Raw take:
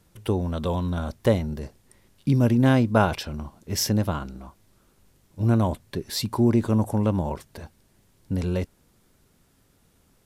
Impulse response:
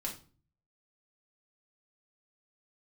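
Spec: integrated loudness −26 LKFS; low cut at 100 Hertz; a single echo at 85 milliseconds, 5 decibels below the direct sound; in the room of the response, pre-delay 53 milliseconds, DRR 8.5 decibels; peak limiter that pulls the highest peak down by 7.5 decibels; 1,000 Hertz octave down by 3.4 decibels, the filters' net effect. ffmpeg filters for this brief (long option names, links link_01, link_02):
-filter_complex "[0:a]highpass=100,equalizer=frequency=1000:width_type=o:gain=-4.5,alimiter=limit=-13dB:level=0:latency=1,aecho=1:1:85:0.562,asplit=2[link_01][link_02];[1:a]atrim=start_sample=2205,adelay=53[link_03];[link_02][link_03]afir=irnorm=-1:irlink=0,volume=-9.5dB[link_04];[link_01][link_04]amix=inputs=2:normalize=0,volume=-0.5dB"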